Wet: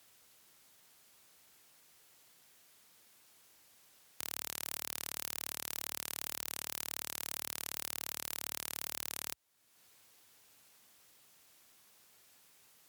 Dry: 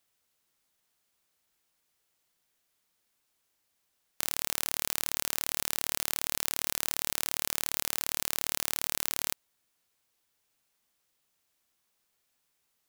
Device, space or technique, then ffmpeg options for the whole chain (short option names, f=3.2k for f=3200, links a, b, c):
podcast mastering chain: -af "highpass=f=67:w=0.5412,highpass=f=67:w=1.3066,acompressor=threshold=-58dB:ratio=2,alimiter=limit=-23.5dB:level=0:latency=1:release=69,volume=13dB" -ar 44100 -c:a libmp3lame -b:a 128k